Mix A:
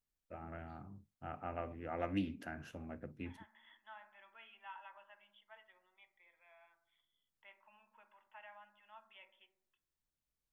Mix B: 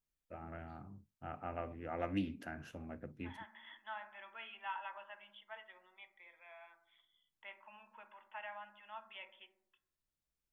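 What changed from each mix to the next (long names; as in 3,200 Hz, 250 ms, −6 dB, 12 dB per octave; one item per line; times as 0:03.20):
second voice +8.5 dB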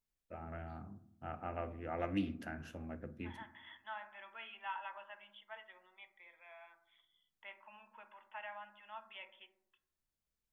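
first voice: send on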